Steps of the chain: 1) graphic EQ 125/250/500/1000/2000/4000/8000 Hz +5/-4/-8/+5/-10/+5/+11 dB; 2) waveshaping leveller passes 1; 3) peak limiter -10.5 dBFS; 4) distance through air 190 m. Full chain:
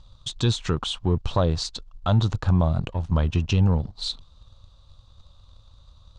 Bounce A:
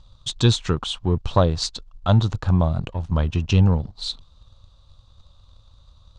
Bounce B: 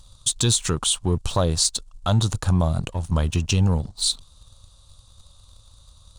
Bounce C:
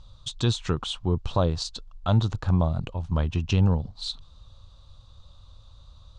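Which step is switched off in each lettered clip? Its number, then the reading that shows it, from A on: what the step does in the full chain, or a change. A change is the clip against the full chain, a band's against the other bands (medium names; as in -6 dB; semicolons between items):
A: 3, crest factor change +3.5 dB; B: 4, 8 kHz band +16.0 dB; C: 2, crest factor change +2.0 dB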